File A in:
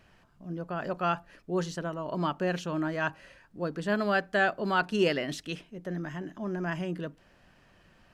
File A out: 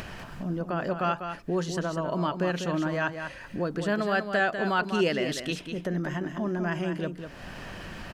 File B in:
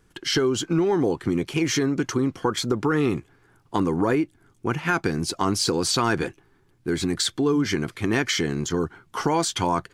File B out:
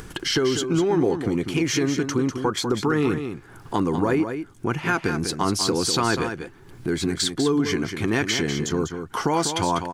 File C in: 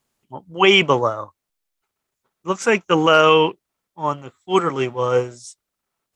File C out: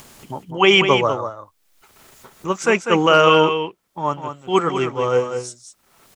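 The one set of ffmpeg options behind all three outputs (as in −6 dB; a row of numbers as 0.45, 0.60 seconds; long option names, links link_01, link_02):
-af "acompressor=mode=upward:threshold=-23dB:ratio=2.5,aecho=1:1:197:0.398"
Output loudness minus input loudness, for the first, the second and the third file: +2.0, +0.5, 0.0 LU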